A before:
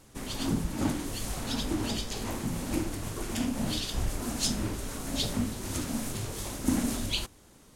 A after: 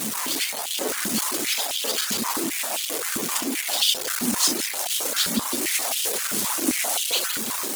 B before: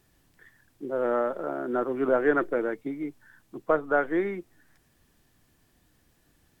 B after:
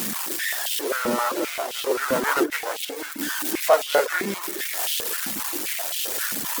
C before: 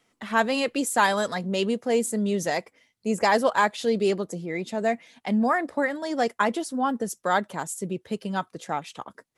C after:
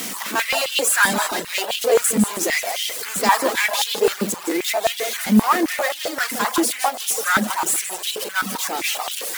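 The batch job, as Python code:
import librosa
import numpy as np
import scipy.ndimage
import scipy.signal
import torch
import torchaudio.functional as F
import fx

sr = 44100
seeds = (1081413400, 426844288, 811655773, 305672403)

y = x + 0.5 * 10.0 ** (-27.0 / 20.0) * np.sign(x)
y = fx.high_shelf(y, sr, hz=2400.0, db=9.0)
y = fx.echo_feedback(y, sr, ms=163, feedback_pct=41, wet_db=-9.5)
y = fx.rev_schroeder(y, sr, rt60_s=1.1, comb_ms=30, drr_db=9.0)
y = fx.mod_noise(y, sr, seeds[0], snr_db=19)
y = fx.high_shelf(y, sr, hz=7800.0, db=5.5)
y = fx.cheby_harmonics(y, sr, harmonics=(6,), levels_db=(-16,), full_scale_db=-5.5)
y = fx.dereverb_blind(y, sr, rt60_s=0.52)
y = fx.buffer_crackle(y, sr, first_s=0.33, period_s=0.13, block=512, kind='repeat')
y = fx.filter_held_highpass(y, sr, hz=7.6, low_hz=220.0, high_hz=3100.0)
y = y * 10.0 ** (-4.0 / 20.0)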